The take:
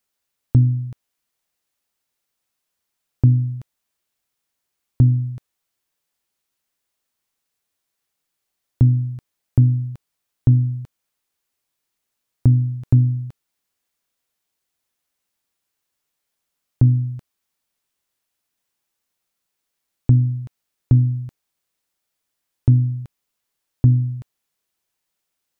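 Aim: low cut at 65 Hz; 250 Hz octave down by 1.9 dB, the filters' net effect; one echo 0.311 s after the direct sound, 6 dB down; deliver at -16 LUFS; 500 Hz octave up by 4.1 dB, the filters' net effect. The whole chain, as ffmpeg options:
-af "highpass=65,equalizer=f=250:t=o:g=-4.5,equalizer=f=500:t=o:g=7.5,aecho=1:1:311:0.501,volume=5dB"

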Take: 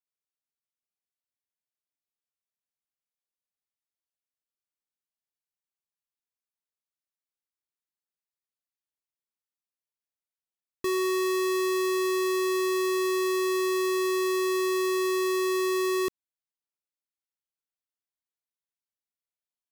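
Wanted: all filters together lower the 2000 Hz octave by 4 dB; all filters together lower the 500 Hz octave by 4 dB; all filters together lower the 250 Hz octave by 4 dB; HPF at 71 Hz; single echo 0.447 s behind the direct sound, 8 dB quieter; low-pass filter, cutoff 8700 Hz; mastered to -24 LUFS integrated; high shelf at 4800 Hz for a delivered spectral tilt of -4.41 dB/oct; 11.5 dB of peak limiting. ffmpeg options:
-af "highpass=71,lowpass=8.7k,equalizer=f=250:t=o:g=-5,equalizer=f=500:t=o:g=-3,equalizer=f=2k:t=o:g=-6,highshelf=f=4.8k:g=8,alimiter=level_in=7.5dB:limit=-24dB:level=0:latency=1,volume=-7.5dB,aecho=1:1:447:0.398,volume=16dB"

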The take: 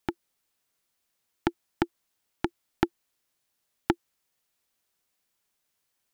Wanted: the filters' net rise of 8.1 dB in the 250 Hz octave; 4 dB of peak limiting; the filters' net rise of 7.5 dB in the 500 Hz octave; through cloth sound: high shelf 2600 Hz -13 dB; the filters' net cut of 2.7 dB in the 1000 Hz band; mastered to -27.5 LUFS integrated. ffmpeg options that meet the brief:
-af "equalizer=f=250:t=o:g=8.5,equalizer=f=500:t=o:g=8,equalizer=f=1k:t=o:g=-5.5,alimiter=limit=-6dB:level=0:latency=1,highshelf=f=2.6k:g=-13,volume=2dB"

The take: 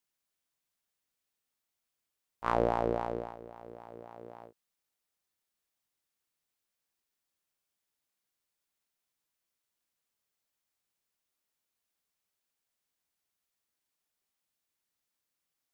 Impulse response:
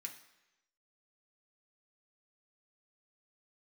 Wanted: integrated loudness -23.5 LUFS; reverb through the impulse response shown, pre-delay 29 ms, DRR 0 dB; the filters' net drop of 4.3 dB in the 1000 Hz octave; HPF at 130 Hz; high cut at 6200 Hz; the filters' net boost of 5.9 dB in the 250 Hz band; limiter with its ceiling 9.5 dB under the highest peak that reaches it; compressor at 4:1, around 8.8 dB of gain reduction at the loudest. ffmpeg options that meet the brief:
-filter_complex "[0:a]highpass=130,lowpass=6.2k,equalizer=f=250:t=o:g=8.5,equalizer=f=1k:t=o:g=-6.5,acompressor=threshold=-32dB:ratio=4,alimiter=level_in=3dB:limit=-24dB:level=0:latency=1,volume=-3dB,asplit=2[a][b];[1:a]atrim=start_sample=2205,adelay=29[c];[b][c]afir=irnorm=-1:irlink=0,volume=4dB[d];[a][d]amix=inputs=2:normalize=0,volume=20dB"

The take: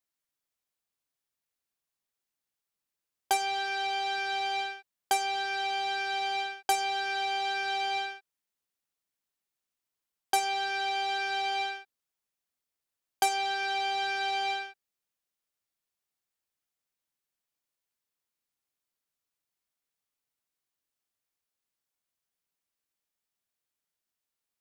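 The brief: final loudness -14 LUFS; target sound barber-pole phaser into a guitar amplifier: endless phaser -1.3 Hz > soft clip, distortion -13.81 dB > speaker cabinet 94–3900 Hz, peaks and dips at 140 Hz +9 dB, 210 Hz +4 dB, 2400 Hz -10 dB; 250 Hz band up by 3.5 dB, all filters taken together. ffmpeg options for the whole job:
-filter_complex "[0:a]equalizer=f=250:t=o:g=7.5,asplit=2[a][b];[b]afreqshift=-1.3[c];[a][c]amix=inputs=2:normalize=1,asoftclip=threshold=-27.5dB,highpass=94,equalizer=f=140:t=q:w=4:g=9,equalizer=f=210:t=q:w=4:g=4,equalizer=f=2.4k:t=q:w=4:g=-10,lowpass=f=3.9k:w=0.5412,lowpass=f=3.9k:w=1.3066,volume=22.5dB"

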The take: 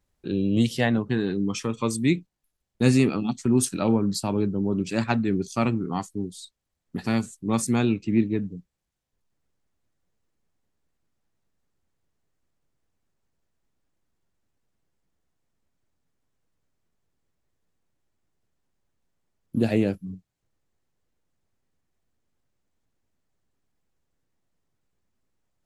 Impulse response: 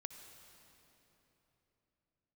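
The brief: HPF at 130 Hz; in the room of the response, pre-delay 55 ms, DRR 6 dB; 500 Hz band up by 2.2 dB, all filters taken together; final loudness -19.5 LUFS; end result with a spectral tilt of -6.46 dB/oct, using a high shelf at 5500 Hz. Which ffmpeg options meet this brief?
-filter_complex "[0:a]highpass=130,equalizer=f=500:t=o:g=3,highshelf=f=5.5k:g=-7,asplit=2[a][b];[1:a]atrim=start_sample=2205,adelay=55[c];[b][c]afir=irnorm=-1:irlink=0,volume=-2dB[d];[a][d]amix=inputs=2:normalize=0,volume=4.5dB"

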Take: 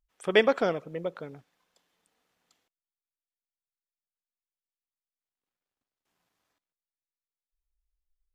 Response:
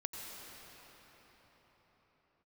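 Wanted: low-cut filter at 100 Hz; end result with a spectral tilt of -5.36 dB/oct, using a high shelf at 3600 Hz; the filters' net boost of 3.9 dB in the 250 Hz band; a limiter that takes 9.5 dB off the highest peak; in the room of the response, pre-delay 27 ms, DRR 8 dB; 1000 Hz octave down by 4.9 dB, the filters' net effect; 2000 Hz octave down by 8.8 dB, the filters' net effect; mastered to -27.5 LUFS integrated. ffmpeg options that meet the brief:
-filter_complex "[0:a]highpass=100,equalizer=f=250:t=o:g=5.5,equalizer=f=1k:t=o:g=-5,equalizer=f=2k:t=o:g=-8,highshelf=f=3.6k:g=-4,alimiter=limit=-18dB:level=0:latency=1,asplit=2[a][b];[1:a]atrim=start_sample=2205,adelay=27[c];[b][c]afir=irnorm=-1:irlink=0,volume=-8.5dB[d];[a][d]amix=inputs=2:normalize=0,volume=4.5dB"

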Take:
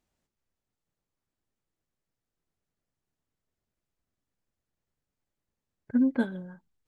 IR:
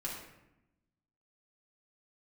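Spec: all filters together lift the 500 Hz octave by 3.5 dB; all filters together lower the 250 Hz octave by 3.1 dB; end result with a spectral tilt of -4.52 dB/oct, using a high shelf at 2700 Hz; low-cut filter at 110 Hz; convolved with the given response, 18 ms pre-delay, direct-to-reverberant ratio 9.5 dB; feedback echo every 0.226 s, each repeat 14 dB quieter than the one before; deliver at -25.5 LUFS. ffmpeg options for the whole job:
-filter_complex "[0:a]highpass=110,equalizer=f=250:t=o:g=-4,equalizer=f=500:t=o:g=5,highshelf=f=2.7k:g=-3.5,aecho=1:1:226|452:0.2|0.0399,asplit=2[a][b];[1:a]atrim=start_sample=2205,adelay=18[c];[b][c]afir=irnorm=-1:irlink=0,volume=-11dB[d];[a][d]amix=inputs=2:normalize=0,volume=5dB"

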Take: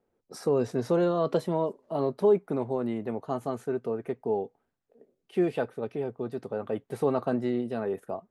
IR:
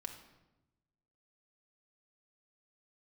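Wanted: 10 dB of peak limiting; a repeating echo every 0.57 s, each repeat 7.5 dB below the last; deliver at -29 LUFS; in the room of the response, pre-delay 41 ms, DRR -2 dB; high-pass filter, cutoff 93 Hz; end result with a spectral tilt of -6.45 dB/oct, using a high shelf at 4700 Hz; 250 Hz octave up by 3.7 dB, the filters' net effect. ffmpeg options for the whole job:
-filter_complex "[0:a]highpass=93,equalizer=f=250:t=o:g=5,highshelf=f=4.7k:g=-4,alimiter=limit=-21dB:level=0:latency=1,aecho=1:1:570|1140|1710|2280|2850:0.422|0.177|0.0744|0.0312|0.0131,asplit=2[a][b];[1:a]atrim=start_sample=2205,adelay=41[c];[b][c]afir=irnorm=-1:irlink=0,volume=4.5dB[d];[a][d]amix=inputs=2:normalize=0,volume=-2dB"

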